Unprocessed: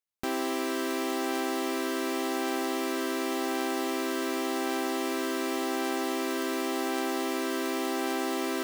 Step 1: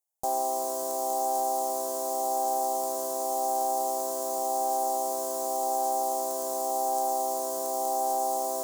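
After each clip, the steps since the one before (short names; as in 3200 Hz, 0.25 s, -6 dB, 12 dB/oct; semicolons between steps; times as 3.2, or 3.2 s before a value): EQ curve 110 Hz 0 dB, 170 Hz -4 dB, 320 Hz -11 dB, 480 Hz +7 dB, 820 Hz +15 dB, 1400 Hz -16 dB, 2400 Hz -23 dB, 6900 Hz +12 dB; gain -4.5 dB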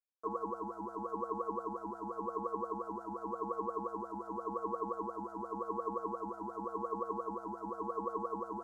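wah 5.7 Hz 520–1100 Hz, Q 9.6; ring modulator 320 Hz; gain +1.5 dB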